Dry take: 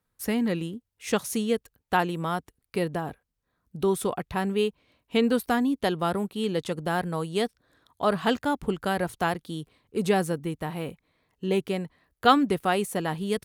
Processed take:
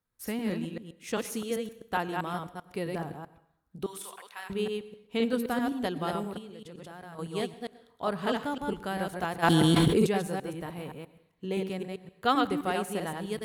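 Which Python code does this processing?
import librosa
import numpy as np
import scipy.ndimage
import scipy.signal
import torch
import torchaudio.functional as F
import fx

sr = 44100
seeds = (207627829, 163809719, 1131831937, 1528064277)

y = fx.reverse_delay(x, sr, ms=130, wet_db=-3)
y = fx.highpass(y, sr, hz=1400.0, slope=12, at=(3.86, 4.5))
y = fx.level_steps(y, sr, step_db=19, at=(6.38, 7.19))
y = fx.rev_plate(y, sr, seeds[0], rt60_s=0.67, hf_ratio=0.95, predelay_ms=85, drr_db=16.5)
y = fx.env_flatten(y, sr, amount_pct=100, at=(9.42, 10.05), fade=0.02)
y = y * 10.0 ** (-7.0 / 20.0)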